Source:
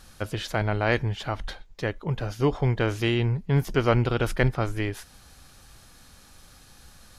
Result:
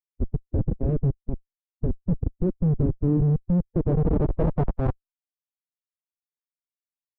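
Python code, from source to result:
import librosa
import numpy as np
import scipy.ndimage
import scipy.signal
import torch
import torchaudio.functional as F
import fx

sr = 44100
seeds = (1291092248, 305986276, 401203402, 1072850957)

y = fx.schmitt(x, sr, flips_db=-22.0)
y = fx.pitch_keep_formants(y, sr, semitones=4.0)
y = fx.filter_sweep_lowpass(y, sr, from_hz=320.0, to_hz=2600.0, start_s=3.45, end_s=6.16, q=1.1)
y = y * librosa.db_to_amplitude(7.5)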